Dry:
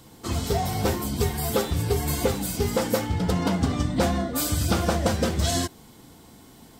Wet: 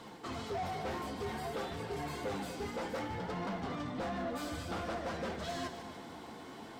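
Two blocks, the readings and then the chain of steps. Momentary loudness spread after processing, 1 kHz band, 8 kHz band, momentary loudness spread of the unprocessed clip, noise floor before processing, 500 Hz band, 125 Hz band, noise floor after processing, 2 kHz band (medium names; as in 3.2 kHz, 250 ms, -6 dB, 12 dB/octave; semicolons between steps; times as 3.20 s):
8 LU, -8.5 dB, -21.5 dB, 3 LU, -50 dBFS, -12.5 dB, -19.0 dB, -49 dBFS, -9.0 dB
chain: treble shelf 8.1 kHz -11 dB; reverse; compression 4:1, threshold -34 dBFS, peak gain reduction 14 dB; reverse; flange 0.56 Hz, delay 4.2 ms, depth 9.7 ms, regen +50%; overdrive pedal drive 23 dB, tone 1.7 kHz, clips at -25 dBFS; crackle 210 per s -53 dBFS; two-band feedback delay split 1.4 kHz, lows 244 ms, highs 149 ms, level -10.5 dB; trim -4 dB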